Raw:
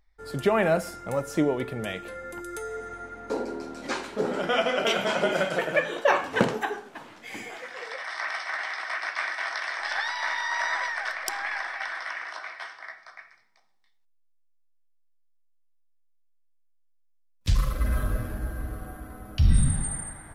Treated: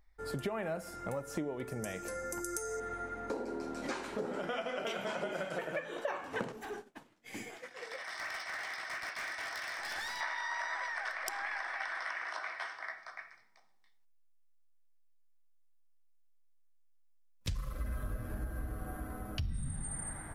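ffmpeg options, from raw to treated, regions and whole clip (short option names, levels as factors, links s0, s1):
-filter_complex "[0:a]asettb=1/sr,asplit=3[s0][s1][s2];[s0]atrim=end=1.674[s3];[s1]atrim=start=1.67:end=2.8,asetpts=PTS-STARTPTS,afade=t=in:d=0.004:c=qsin,afade=t=out:st=1.126:d=0.004:c=qsin,highshelf=f=4500:t=q:w=3:g=8.5,bandreject=f=1200:w=24[s4];[s2]atrim=start=2.796[s5];[s3][s4]acrossfade=d=0.004:c1=hsin:c2=qsin[s6];[s6][s5]acrossfade=d=0.004:c1=qsin:c2=hsin,asettb=1/sr,asplit=3[s7][s8][s9];[s7]atrim=end=6.524[s10];[s8]atrim=start=6.52:end=10.21,asetpts=PTS-STARTPTS,afade=t=in:d=0.004:c=qsin,afade=t=out:st=3.686:d=0.004:c=qsin,equalizer=f=1100:t=o:w=2.5:g=-8,asoftclip=type=hard:threshold=0.0188,agate=range=0.0224:threshold=0.00794:ratio=3:release=100:detection=peak[s11];[s9]atrim=start=10.206[s12];[s10][s11]acrossfade=d=0.004:c1=hsin:c2=qsin[s13];[s13][s12]acrossfade=d=0.004:c1=qsin:c2=hsin,equalizer=f=3800:w=1:g=-3.5,acompressor=threshold=0.0178:ratio=6"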